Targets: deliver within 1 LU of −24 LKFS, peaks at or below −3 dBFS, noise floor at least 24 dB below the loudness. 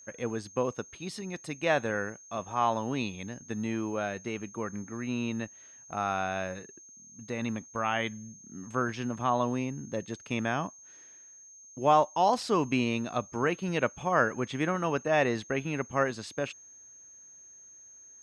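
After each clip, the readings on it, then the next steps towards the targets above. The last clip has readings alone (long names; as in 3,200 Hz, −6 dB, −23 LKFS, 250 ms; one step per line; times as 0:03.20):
interfering tone 6,400 Hz; level of the tone −50 dBFS; integrated loudness −31.0 LKFS; sample peak −11.0 dBFS; target loudness −24.0 LKFS
→ notch filter 6,400 Hz, Q 30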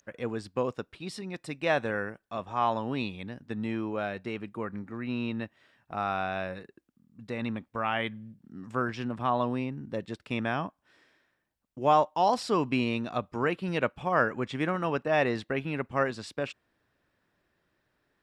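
interfering tone none found; integrated loudness −31.0 LKFS; sample peak −11.5 dBFS; target loudness −24.0 LKFS
→ level +7 dB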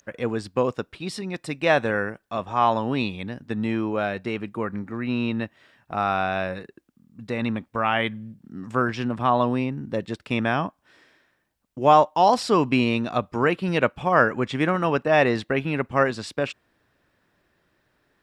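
integrated loudness −24.0 LKFS; sample peak −4.5 dBFS; background noise floor −71 dBFS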